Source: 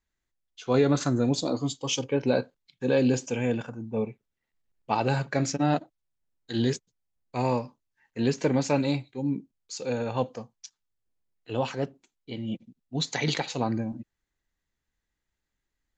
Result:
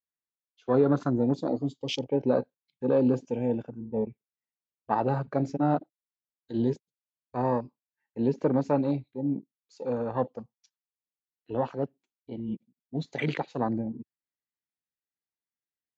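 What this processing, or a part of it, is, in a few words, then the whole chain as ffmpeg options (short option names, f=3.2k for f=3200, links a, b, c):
over-cleaned archive recording: -af "highpass=130,lowpass=5k,afwtdn=0.0251"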